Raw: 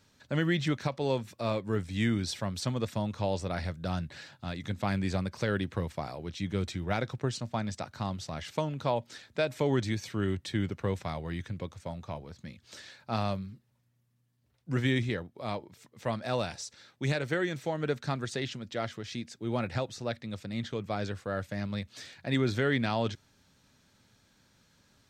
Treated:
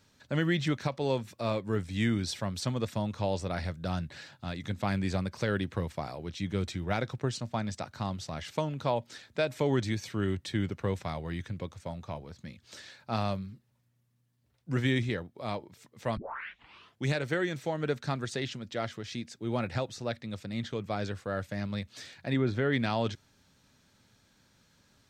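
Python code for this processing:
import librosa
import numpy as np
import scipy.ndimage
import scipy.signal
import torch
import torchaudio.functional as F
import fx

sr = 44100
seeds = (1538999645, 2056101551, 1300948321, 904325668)

y = fx.lowpass(x, sr, hz=1700.0, slope=6, at=(22.32, 22.72), fade=0.02)
y = fx.edit(y, sr, fx.tape_start(start_s=16.17, length_s=0.89), tone=tone)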